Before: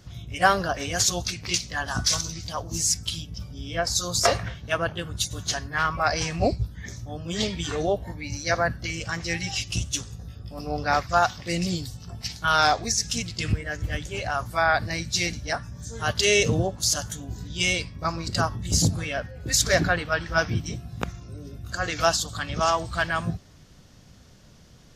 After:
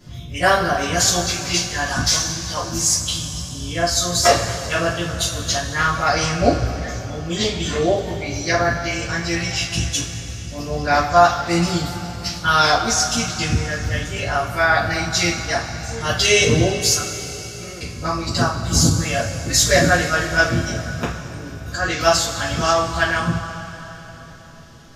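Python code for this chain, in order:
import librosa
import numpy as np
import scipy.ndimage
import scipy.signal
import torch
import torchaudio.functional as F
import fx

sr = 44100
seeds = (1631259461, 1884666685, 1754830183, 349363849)

y = fx.ladder_lowpass(x, sr, hz=1400.0, resonance_pct=85, at=(16.93, 17.81))
y = fx.rev_double_slope(y, sr, seeds[0], early_s=0.29, late_s=3.9, knee_db=-18, drr_db=-9.0)
y = y * 10.0 ** (-3.0 / 20.0)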